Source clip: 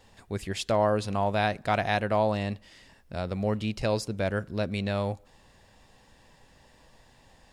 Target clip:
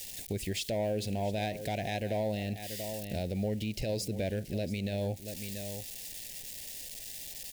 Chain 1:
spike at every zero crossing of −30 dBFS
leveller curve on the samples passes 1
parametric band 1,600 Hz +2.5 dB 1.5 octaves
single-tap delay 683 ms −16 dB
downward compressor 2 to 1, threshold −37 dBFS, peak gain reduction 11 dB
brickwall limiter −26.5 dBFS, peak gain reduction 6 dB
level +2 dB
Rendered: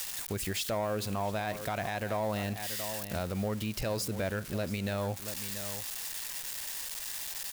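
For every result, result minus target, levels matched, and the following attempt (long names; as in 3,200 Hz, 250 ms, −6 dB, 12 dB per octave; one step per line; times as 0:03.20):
spike at every zero crossing: distortion +8 dB; 1,000 Hz band +2.5 dB
spike at every zero crossing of −38 dBFS
leveller curve on the samples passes 1
parametric band 1,600 Hz +2.5 dB 1.5 octaves
single-tap delay 683 ms −16 dB
downward compressor 2 to 1, threshold −37 dBFS, peak gain reduction 11 dB
brickwall limiter −26.5 dBFS, peak gain reduction 6 dB
level +2 dB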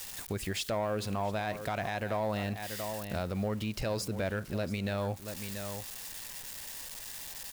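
1,000 Hz band +4.0 dB
spike at every zero crossing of −38 dBFS
leveller curve on the samples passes 1
Butterworth band-reject 1,200 Hz, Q 0.84
parametric band 1,600 Hz +2.5 dB 1.5 octaves
single-tap delay 683 ms −16 dB
downward compressor 2 to 1, threshold −37 dBFS, peak gain reduction 9.5 dB
brickwall limiter −26.5 dBFS, peak gain reduction 5.5 dB
level +2 dB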